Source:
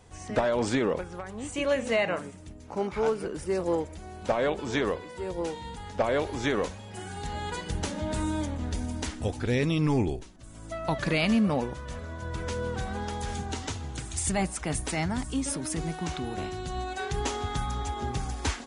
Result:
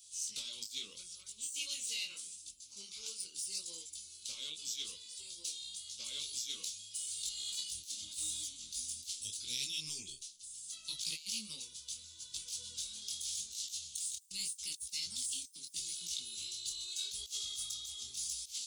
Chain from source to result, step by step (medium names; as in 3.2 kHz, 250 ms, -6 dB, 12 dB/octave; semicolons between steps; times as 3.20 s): tracing distortion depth 0.057 ms; inverse Chebyshev high-pass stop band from 1.9 kHz, stop band 40 dB; treble shelf 9.3 kHz +4.5 dB; compressor with a negative ratio -45 dBFS, ratio -0.5; detune thickener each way 28 cents; trim +8.5 dB